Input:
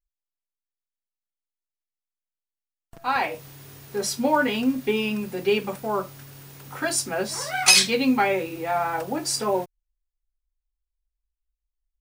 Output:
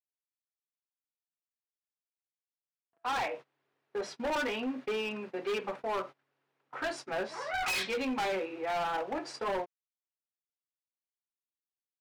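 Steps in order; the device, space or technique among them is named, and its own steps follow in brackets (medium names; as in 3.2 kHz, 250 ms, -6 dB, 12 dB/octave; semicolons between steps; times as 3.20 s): walkie-talkie (band-pass 410–2300 Hz; hard clipper -27 dBFS, distortion -6 dB; gate -41 dBFS, range -24 dB); trim -2.5 dB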